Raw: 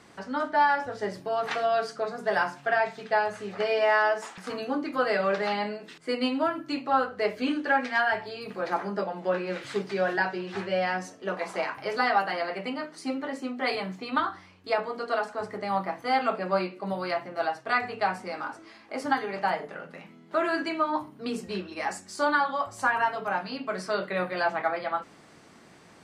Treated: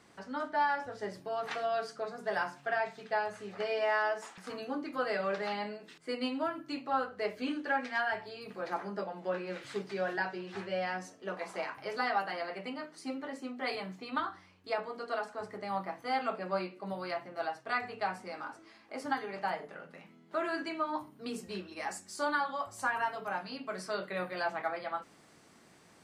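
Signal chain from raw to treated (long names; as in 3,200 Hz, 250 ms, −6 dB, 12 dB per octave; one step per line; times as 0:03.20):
high-shelf EQ 7,400 Hz +3 dB, from 0:20.89 +9 dB
level −7.5 dB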